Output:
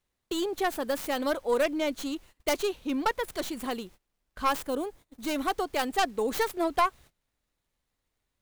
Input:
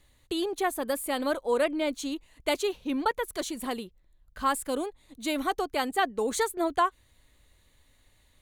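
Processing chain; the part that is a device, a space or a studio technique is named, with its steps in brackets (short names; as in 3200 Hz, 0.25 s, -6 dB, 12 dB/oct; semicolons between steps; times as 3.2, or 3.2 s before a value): record under a worn stylus (tracing distortion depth 0.22 ms; crackle; pink noise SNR 31 dB); gate -49 dBFS, range -22 dB; 4.62–5.31 bell 3400 Hz -4.5 dB 2.4 oct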